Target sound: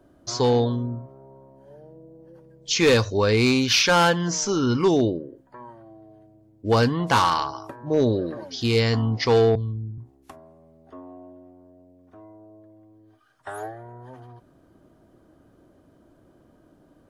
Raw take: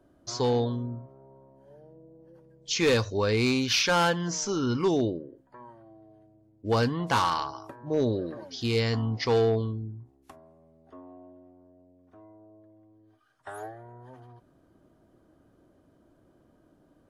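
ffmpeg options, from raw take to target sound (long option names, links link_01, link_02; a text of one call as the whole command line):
ffmpeg -i in.wav -filter_complex "[0:a]asettb=1/sr,asplit=3[link_01][link_02][link_03];[link_01]atrim=end=9.554[link_04];[link_02]atrim=start=9.55:end=9.98,asetpts=PTS-STARTPTS,afade=type=in:duration=0.004:curve=qsin,afade=type=out:start_time=0.426:duration=0.004:curve=qsin,acrossover=split=160[link_05][link_06];[link_06]acompressor=threshold=-51dB:ratio=2.5[link_07];[link_05][link_07]amix=inputs=2:normalize=0[link_08];[link_03]atrim=start=9.976[link_09];[link_04][link_08]acrossfade=duration=0.004:curve1=hsin:curve2=qsin[link_10];[link_10][link_09]acrossfade=duration=0.004:curve1=qsin:curve2=hsin,volume=5.5dB" out.wav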